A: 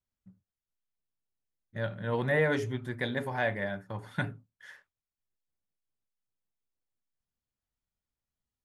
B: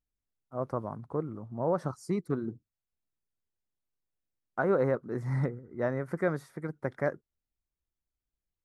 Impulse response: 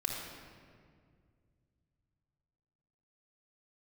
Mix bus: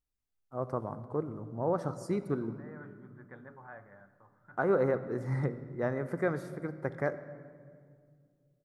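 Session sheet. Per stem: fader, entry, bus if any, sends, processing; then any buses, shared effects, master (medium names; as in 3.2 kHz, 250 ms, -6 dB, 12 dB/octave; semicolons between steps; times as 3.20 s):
-7.5 dB, 0.30 s, send -17.5 dB, four-pole ladder low-pass 1.4 kHz, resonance 70%; auto duck -12 dB, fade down 1.20 s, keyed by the second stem
-3.0 dB, 0.00 s, send -11.5 dB, none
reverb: on, RT60 2.1 s, pre-delay 3 ms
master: none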